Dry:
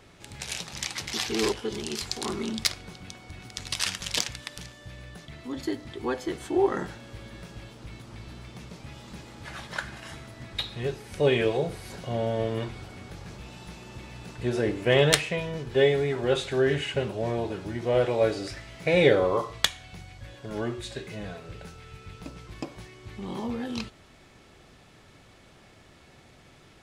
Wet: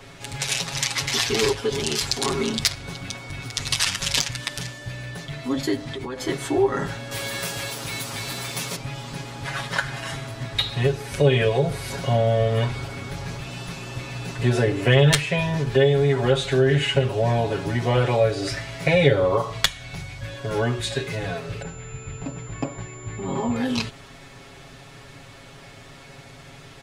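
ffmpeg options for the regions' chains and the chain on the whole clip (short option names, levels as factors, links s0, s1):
-filter_complex "[0:a]asettb=1/sr,asplit=3[s0][s1][s2];[s0]atrim=end=5.764[s3];[s1]atrim=start=5.76:end=6.2,asetpts=PTS-STARTPTS,afade=t=in:d=0.004:c=qsin,afade=t=out:st=0.436:d=0.004:c=qsin,equalizer=f=12000:t=o:w=0.24:g=-8,acompressor=threshold=0.0158:ratio=16:attack=3.2:release=140:knee=1:detection=peak,aeval=exprs='val(0)+0.00316*(sin(2*PI*60*n/s)+sin(2*PI*2*60*n/s)/2+sin(2*PI*3*60*n/s)/3+sin(2*PI*4*60*n/s)/4+sin(2*PI*5*60*n/s)/5)':c=same[s4];[s2]atrim=start=6.196[s5];[s3][s4]acrossfade=d=0.004:c1=hsin:c2=qsin[s6];[s6][s5]acrossfade=d=0.004:c1=qsin:c2=hsin,asettb=1/sr,asplit=3[s7][s8][s9];[s7]atrim=end=7.114[s10];[s8]atrim=start=7.11:end=8.76,asetpts=PTS-STARTPTS,afade=t=in:d=0.004:c=qsin,afade=t=out:st=1.646:d=0.004:c=qsin,aemphasis=mode=production:type=bsi,acontrast=37[s11];[s9]atrim=start=8.756[s12];[s10][s11]acrossfade=d=0.004:c1=hsin:c2=qsin[s13];[s13][s12]acrossfade=d=0.004:c1=qsin:c2=hsin,asettb=1/sr,asplit=3[s14][s15][s16];[s14]atrim=end=21.624[s17];[s15]atrim=start=21.62:end=23.56,asetpts=PTS-STARTPTS,afade=t=in:d=0.004:c=qsin,afade=t=out:st=1.936:d=0.004:c=qsin,highshelf=f=9100:g=6,adynamicsmooth=sensitivity=0.5:basefreq=2400,aeval=exprs='val(0)+0.00501*sin(2*PI*7200*n/s)':c=same[s18];[s16]atrim=start=23.556[s19];[s17][s18]acrossfade=d=0.004:c1=hsin:c2=qsin[s20];[s20][s19]acrossfade=d=0.004:c1=qsin:c2=hsin,equalizer=f=310:w=1.4:g=-3,aecho=1:1:7.3:0.92,acrossover=split=150[s21][s22];[s22]acompressor=threshold=0.0398:ratio=2.5[s23];[s21][s23]amix=inputs=2:normalize=0,volume=2.51"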